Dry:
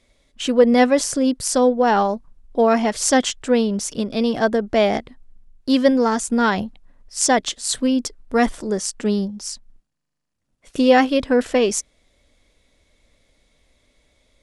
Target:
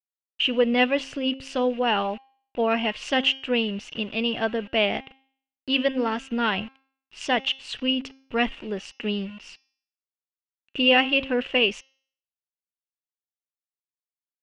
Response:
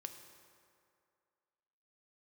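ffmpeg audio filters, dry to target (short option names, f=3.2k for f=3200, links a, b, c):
-af "aeval=exprs='val(0)*gte(abs(val(0)),0.015)':c=same,lowpass=f=2.8k:t=q:w=12,bandreject=f=267.1:t=h:w=4,bandreject=f=534.2:t=h:w=4,bandreject=f=801.3:t=h:w=4,bandreject=f=1.0684k:t=h:w=4,bandreject=f=1.3355k:t=h:w=4,bandreject=f=1.6026k:t=h:w=4,bandreject=f=1.8697k:t=h:w=4,bandreject=f=2.1368k:t=h:w=4,bandreject=f=2.4039k:t=h:w=4,bandreject=f=2.671k:t=h:w=4,bandreject=f=2.9381k:t=h:w=4,bandreject=f=3.2052k:t=h:w=4,bandreject=f=3.4723k:t=h:w=4,bandreject=f=3.7394k:t=h:w=4,bandreject=f=4.0065k:t=h:w=4,bandreject=f=4.2736k:t=h:w=4,bandreject=f=4.5407k:t=h:w=4,bandreject=f=4.8078k:t=h:w=4,bandreject=f=5.0749k:t=h:w=4,bandreject=f=5.342k:t=h:w=4,bandreject=f=5.6091k:t=h:w=4,bandreject=f=5.8762k:t=h:w=4,bandreject=f=6.1433k:t=h:w=4,bandreject=f=6.4104k:t=h:w=4,volume=-8dB"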